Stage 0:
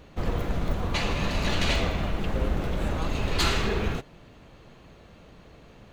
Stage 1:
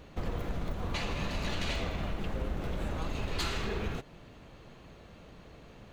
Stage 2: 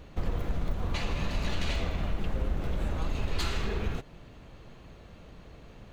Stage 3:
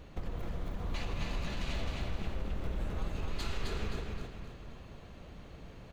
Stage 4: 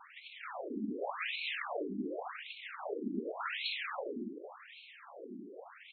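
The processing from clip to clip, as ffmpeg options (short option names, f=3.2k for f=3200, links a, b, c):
-af "acompressor=threshold=-30dB:ratio=3,volume=-1.5dB"
-af "lowshelf=f=88:g=7"
-af "acompressor=threshold=-31dB:ratio=4,aecho=1:1:262|524|786|1048|1310:0.708|0.297|0.125|0.0525|0.022,volume=-2.5dB"
-af "afftfilt=real='hypot(re,im)*cos(2*PI*random(0))':imag='hypot(re,im)*sin(2*PI*random(1))':win_size=512:overlap=0.75,afftfilt=real='re*between(b*sr/1024,270*pow(3100/270,0.5+0.5*sin(2*PI*0.88*pts/sr))/1.41,270*pow(3100/270,0.5+0.5*sin(2*PI*0.88*pts/sr))*1.41)':imag='im*between(b*sr/1024,270*pow(3100/270,0.5+0.5*sin(2*PI*0.88*pts/sr))/1.41,270*pow(3100/270,0.5+0.5*sin(2*PI*0.88*pts/sr))*1.41)':win_size=1024:overlap=0.75,volume=17dB"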